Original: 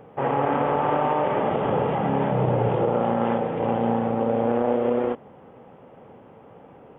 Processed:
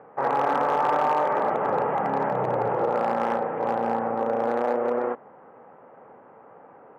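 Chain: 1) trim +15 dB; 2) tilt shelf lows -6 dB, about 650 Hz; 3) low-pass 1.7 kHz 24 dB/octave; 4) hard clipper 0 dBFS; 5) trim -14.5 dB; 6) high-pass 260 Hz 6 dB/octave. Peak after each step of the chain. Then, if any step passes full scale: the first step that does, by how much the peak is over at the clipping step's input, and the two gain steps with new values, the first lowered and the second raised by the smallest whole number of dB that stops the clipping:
+6.0 dBFS, +6.0 dBFS, +5.0 dBFS, 0.0 dBFS, -14.5 dBFS, -12.5 dBFS; step 1, 5.0 dB; step 1 +10 dB, step 5 -9.5 dB

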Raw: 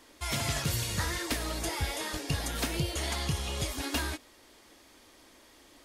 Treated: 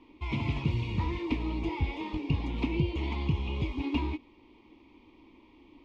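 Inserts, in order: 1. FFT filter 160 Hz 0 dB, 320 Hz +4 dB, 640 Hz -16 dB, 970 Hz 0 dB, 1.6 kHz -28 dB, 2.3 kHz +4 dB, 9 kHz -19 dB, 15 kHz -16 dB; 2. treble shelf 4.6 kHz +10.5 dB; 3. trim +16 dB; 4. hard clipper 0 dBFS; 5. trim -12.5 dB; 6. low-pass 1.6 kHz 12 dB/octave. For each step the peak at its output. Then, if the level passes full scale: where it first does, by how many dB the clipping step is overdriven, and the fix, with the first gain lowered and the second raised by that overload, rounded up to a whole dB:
-19.5 dBFS, -18.0 dBFS, -2.0 dBFS, -2.0 dBFS, -14.5 dBFS, -16.5 dBFS; nothing clips

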